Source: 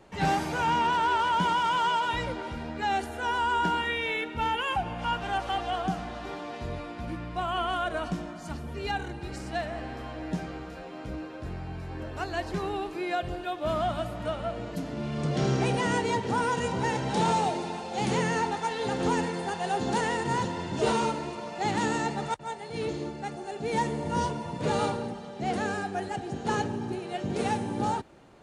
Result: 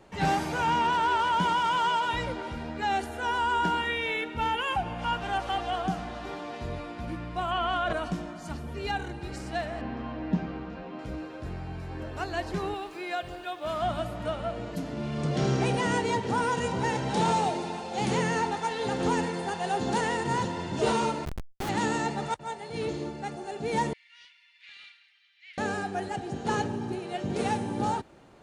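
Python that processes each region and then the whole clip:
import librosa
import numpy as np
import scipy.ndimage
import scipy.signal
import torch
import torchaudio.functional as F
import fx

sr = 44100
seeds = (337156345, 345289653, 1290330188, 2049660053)

y = fx.chain(x, sr, fx.lowpass(hz=5500.0, slope=12),
    fx.peak_eq(hz=390.0, db=-5.5, octaves=0.38),
    fx.env_flatten(amount_pct=100), at=(7.51, 7.93))
y = fx.chain(y, sr, fx.air_absorb(metres=170.0),
    fx.small_body(hz=(220.0, 1000.0, 2700.0), ring_ms=45, db=10), at=(9.81, 10.99))
y = fx.chain(y, sr, fx.low_shelf(hz=490.0, db=-9.0),
    fx.quant_dither(seeds[0], bits=12, dither='triangular'), at=(12.74, 13.82))
y = fx.chain(y, sr, fx.highpass(hz=81.0, slope=6),
    fx.schmitt(flips_db=-28.0),
    fx.env_flatten(amount_pct=70), at=(21.25, 21.69))
y = fx.chain(y, sr, fx.ellip_highpass(hz=2100.0, order=4, stop_db=80),
    fx.overload_stage(gain_db=33.0),
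    fx.air_absorb(metres=360.0), at=(23.93, 25.58))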